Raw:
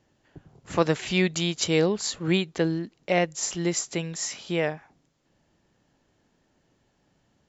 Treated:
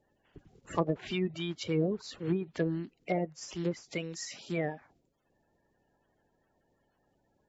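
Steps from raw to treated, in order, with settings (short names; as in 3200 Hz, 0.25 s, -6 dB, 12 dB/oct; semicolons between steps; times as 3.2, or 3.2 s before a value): bin magnitudes rounded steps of 30 dB; treble ducked by the level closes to 580 Hz, closed at -18.5 dBFS; gain -5.5 dB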